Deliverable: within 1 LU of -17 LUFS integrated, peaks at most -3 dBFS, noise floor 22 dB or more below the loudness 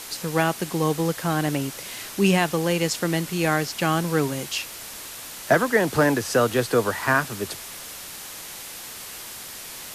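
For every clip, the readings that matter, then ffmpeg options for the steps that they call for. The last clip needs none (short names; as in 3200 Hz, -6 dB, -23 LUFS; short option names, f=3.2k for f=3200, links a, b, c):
noise floor -38 dBFS; noise floor target -46 dBFS; loudness -23.5 LUFS; peak -5.0 dBFS; loudness target -17.0 LUFS
-> -af "afftdn=nr=8:nf=-38"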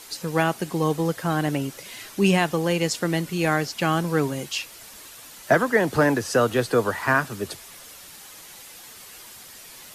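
noise floor -44 dBFS; noise floor target -46 dBFS
-> -af "afftdn=nr=6:nf=-44"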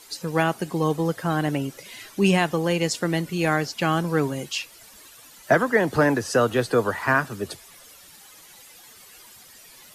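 noise floor -49 dBFS; loudness -23.5 LUFS; peak -5.5 dBFS; loudness target -17.0 LUFS
-> -af "volume=6.5dB,alimiter=limit=-3dB:level=0:latency=1"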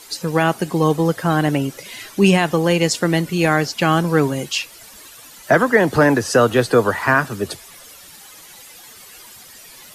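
loudness -17.5 LUFS; peak -3.0 dBFS; noise floor -42 dBFS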